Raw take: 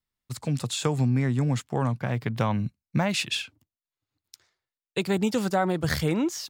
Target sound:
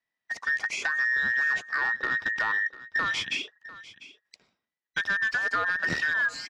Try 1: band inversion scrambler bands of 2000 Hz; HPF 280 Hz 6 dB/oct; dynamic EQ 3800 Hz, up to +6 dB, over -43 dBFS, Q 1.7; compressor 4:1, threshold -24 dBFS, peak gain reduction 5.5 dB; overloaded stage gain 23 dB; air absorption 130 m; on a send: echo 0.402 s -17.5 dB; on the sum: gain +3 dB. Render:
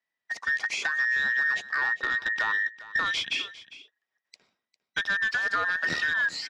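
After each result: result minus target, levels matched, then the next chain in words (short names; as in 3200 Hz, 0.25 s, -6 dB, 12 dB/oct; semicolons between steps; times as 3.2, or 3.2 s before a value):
echo 0.295 s early; 125 Hz band -4.0 dB; 4000 Hz band +3.0 dB
band inversion scrambler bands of 2000 Hz; HPF 280 Hz 6 dB/oct; dynamic EQ 3800 Hz, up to +6 dB, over -43 dBFS, Q 1.7; compressor 4:1, threshold -24 dBFS, peak gain reduction 5.5 dB; overloaded stage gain 23 dB; air absorption 130 m; on a send: echo 0.697 s -17.5 dB; on the sum: gain +3 dB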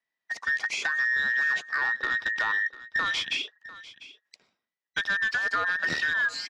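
125 Hz band -4.0 dB; 4000 Hz band +3.0 dB
band inversion scrambler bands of 2000 Hz; HPF 110 Hz 6 dB/oct; dynamic EQ 3800 Hz, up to +6 dB, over -43 dBFS, Q 1.7; compressor 4:1, threshold -24 dBFS, peak gain reduction 5.5 dB; overloaded stage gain 23 dB; air absorption 130 m; on a send: echo 0.697 s -17.5 dB; on the sum: gain +3 dB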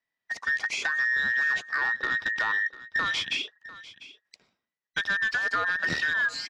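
4000 Hz band +3.0 dB
band inversion scrambler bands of 2000 Hz; HPF 110 Hz 6 dB/oct; compressor 4:1, threshold -24 dBFS, peak gain reduction 5 dB; overloaded stage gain 23 dB; air absorption 130 m; on a send: echo 0.697 s -17.5 dB; on the sum: gain +3 dB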